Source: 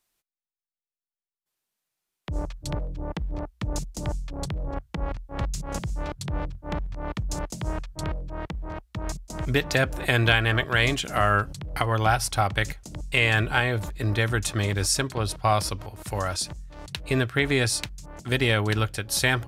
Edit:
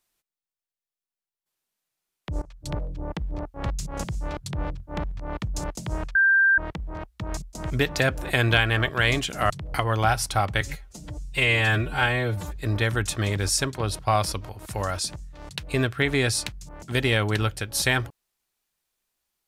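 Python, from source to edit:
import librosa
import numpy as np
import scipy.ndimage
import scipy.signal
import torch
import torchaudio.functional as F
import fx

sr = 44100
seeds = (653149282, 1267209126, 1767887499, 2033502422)

y = fx.edit(x, sr, fx.fade_in_from(start_s=2.42, length_s=0.32, floor_db=-21.5),
    fx.cut(start_s=3.54, length_s=1.75),
    fx.bleep(start_s=7.9, length_s=0.43, hz=1580.0, db=-15.0),
    fx.cut(start_s=11.25, length_s=0.27),
    fx.stretch_span(start_s=12.63, length_s=1.3, factor=1.5), tone=tone)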